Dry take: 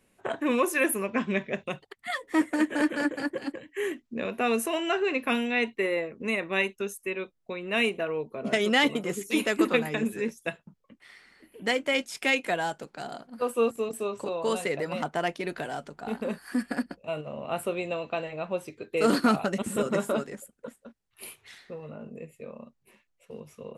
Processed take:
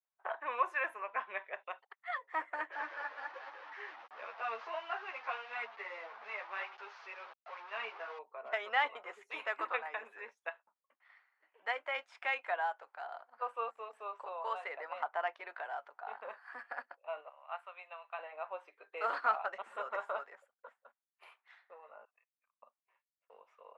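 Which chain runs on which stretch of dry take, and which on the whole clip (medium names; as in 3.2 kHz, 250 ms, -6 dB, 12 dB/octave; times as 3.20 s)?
2.72–8.19 s: one-bit delta coder 32 kbps, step -30.5 dBFS + three-phase chorus
17.29–18.19 s: high-pass 930 Hz + upward expansion, over -44 dBFS
22.05–22.62 s: high-pass 1.1 kHz 24 dB/octave + level held to a coarse grid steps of 19 dB
whole clip: low-pass 1.3 kHz 12 dB/octave; expander -55 dBFS; high-pass 810 Hz 24 dB/octave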